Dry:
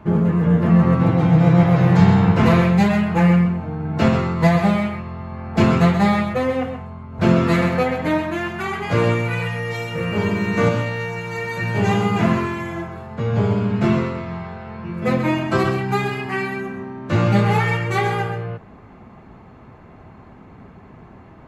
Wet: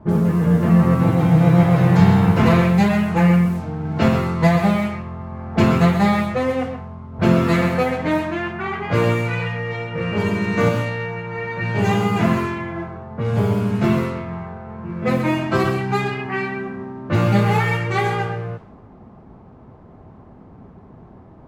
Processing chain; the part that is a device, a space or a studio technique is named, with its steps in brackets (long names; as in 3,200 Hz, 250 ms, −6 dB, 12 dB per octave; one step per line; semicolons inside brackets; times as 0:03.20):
cassette deck with a dynamic noise filter (white noise bed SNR 30 dB; low-pass that shuts in the quiet parts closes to 770 Hz, open at −14.5 dBFS)